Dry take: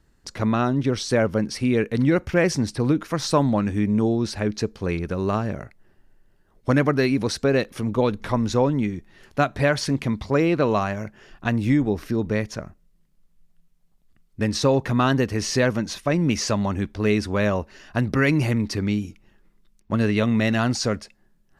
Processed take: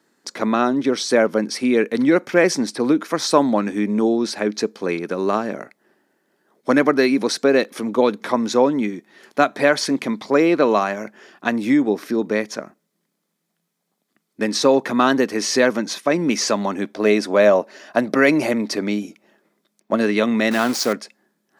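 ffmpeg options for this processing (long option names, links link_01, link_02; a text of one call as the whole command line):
ffmpeg -i in.wav -filter_complex "[0:a]asettb=1/sr,asplit=3[link_01][link_02][link_03];[link_01]atrim=end=16.804[link_04];[link_02]atrim=start=16.8:end=20.01,asetpts=PTS-STARTPTS,afade=type=in:duration=0.004:curve=qsin,afade=type=out:start_time=3.206:duration=0.004:curve=qsin,equalizer=frequency=620:width=3.2:gain=8.5[link_05];[link_03]atrim=start=20.006[link_06];[link_04][link_05]acrossfade=duration=0.004:curve1=hsin:curve2=qsin[link_07];[link_07][link_06]acrossfade=duration=0.004:curve1=qsin:curve2=hsin,asettb=1/sr,asplit=3[link_08][link_09][link_10];[link_08]atrim=end=20.514[link_11];[link_09]atrim=start=20.51:end=20.93,asetpts=PTS-STARTPTS,afade=type=in:duration=0.004:curve=qsin,afade=type=out:start_time=0.416:duration=0.004:curve=qsin,aeval=exprs='val(0)*gte(abs(val(0)),0.0376)':channel_layout=same[link_12];[link_10]atrim=start=20.926[link_13];[link_11][link_12]acrossfade=duration=0.004:curve1=hsin:curve2=qsin[link_14];[link_14][link_13]acrossfade=duration=0.004:curve1=qsin:curve2=hsin,highpass=frequency=230:width=0.5412,highpass=frequency=230:width=1.3066,bandreject=frequency=2800:width=12,volume=5dB" out.wav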